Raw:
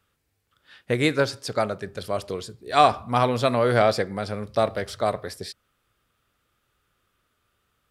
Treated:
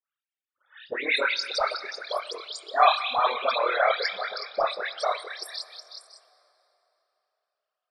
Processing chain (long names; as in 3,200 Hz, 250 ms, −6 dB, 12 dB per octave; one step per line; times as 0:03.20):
high-pass filter 940 Hz 12 dB per octave
echo through a band-pass that steps 185 ms, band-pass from 2,800 Hz, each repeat 0.7 octaves, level −4.5 dB
noise gate with hold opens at −53 dBFS
amplitude modulation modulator 38 Hz, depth 90%
in parallel at −11 dB: wrap-around overflow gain 19 dB
on the sum: all-pass dispersion highs, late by 124 ms, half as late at 2,000 Hz
spectral peaks only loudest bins 64
dense smooth reverb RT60 3.5 s, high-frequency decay 0.75×, DRR 17 dB
level +6 dB